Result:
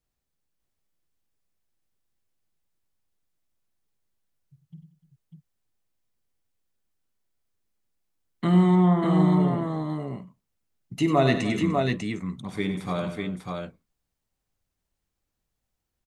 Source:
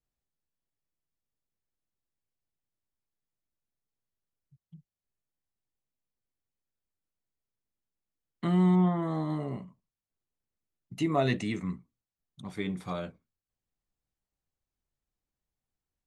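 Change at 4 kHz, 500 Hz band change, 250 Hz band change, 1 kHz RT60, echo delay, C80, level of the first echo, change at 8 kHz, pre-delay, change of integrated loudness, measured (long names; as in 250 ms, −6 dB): +7.5 dB, +7.5 dB, +7.0 dB, no reverb audible, 51 ms, no reverb audible, −14.0 dB, can't be measured, no reverb audible, +5.5 dB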